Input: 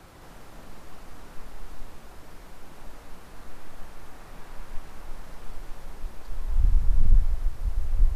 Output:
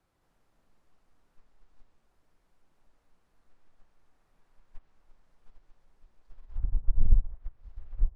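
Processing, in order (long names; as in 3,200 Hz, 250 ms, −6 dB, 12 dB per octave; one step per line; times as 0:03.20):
treble cut that deepens with the level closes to 800 Hz, closed at −13.5 dBFS
expander for the loud parts 2.5 to 1, over −27 dBFS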